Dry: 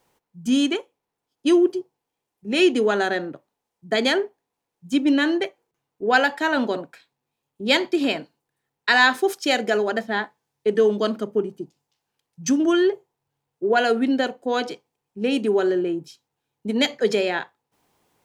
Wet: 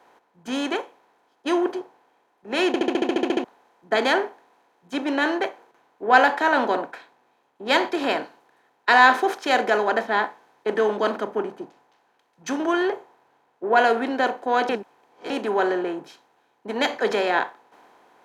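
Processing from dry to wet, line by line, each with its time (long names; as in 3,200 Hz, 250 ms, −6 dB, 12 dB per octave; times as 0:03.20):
0:02.67: stutter in place 0.07 s, 11 plays
0:14.69–0:15.30: reverse
whole clip: compressor on every frequency bin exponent 0.6; parametric band 940 Hz +13.5 dB 1.9 octaves; multiband upward and downward expander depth 40%; level −11.5 dB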